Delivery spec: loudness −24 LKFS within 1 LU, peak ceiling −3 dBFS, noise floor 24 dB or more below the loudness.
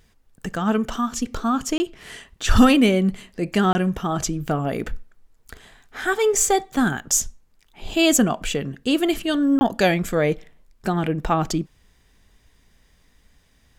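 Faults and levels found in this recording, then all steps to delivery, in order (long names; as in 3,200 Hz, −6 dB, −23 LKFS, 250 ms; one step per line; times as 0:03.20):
number of dropouts 3; longest dropout 20 ms; integrated loudness −21.5 LKFS; sample peak −3.0 dBFS; target loudness −24.0 LKFS
→ repair the gap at 0:01.78/0:03.73/0:09.59, 20 ms
level −2.5 dB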